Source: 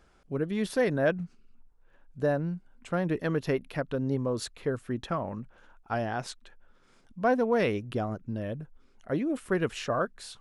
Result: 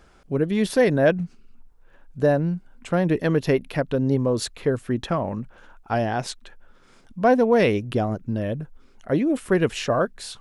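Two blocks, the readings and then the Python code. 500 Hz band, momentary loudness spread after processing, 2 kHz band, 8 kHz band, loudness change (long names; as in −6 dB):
+8.0 dB, 12 LU, +6.0 dB, +8.0 dB, +7.5 dB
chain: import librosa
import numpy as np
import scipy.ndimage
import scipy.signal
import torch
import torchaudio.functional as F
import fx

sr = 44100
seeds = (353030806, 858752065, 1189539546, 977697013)

y = fx.dynamic_eq(x, sr, hz=1300.0, q=2.2, threshold_db=-49.0, ratio=4.0, max_db=-5)
y = y * librosa.db_to_amplitude(8.0)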